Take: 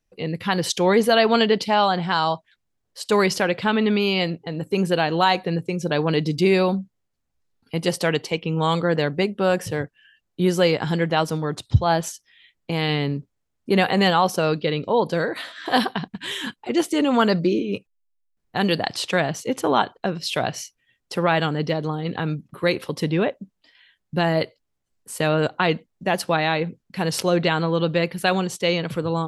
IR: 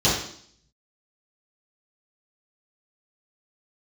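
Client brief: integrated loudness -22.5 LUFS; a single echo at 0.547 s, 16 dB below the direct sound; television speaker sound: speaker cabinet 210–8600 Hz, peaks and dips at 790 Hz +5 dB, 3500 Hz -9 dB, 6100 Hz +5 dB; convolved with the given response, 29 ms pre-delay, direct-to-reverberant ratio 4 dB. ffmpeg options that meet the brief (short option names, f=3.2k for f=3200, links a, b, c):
-filter_complex "[0:a]aecho=1:1:547:0.158,asplit=2[a][b];[1:a]atrim=start_sample=2205,adelay=29[c];[b][c]afir=irnorm=-1:irlink=0,volume=-21.5dB[d];[a][d]amix=inputs=2:normalize=0,highpass=f=210:w=0.5412,highpass=f=210:w=1.3066,equalizer=f=790:t=q:w=4:g=5,equalizer=f=3.5k:t=q:w=4:g=-9,equalizer=f=6.1k:t=q:w=4:g=5,lowpass=f=8.6k:w=0.5412,lowpass=f=8.6k:w=1.3066,volume=-3dB"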